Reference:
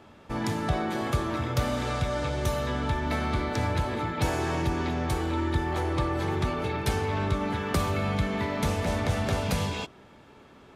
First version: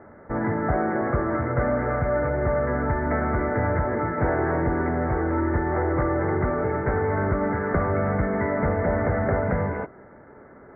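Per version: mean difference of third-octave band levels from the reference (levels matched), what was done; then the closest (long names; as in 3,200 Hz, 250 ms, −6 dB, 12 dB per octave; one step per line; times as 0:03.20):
10.0 dB: wavefolder on the positive side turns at −20.5 dBFS
Chebyshev low-pass with heavy ripple 2,100 Hz, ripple 6 dB
level +8.5 dB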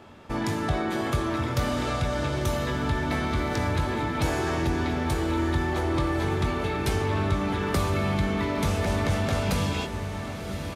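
3.0 dB: feedback delay with all-pass diffusion 1,097 ms, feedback 60%, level −11 dB
in parallel at −1 dB: brickwall limiter −24 dBFS, peak gain reduction 10.5 dB
on the sum: double-tracking delay 21 ms −10.5 dB
level −2.5 dB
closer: second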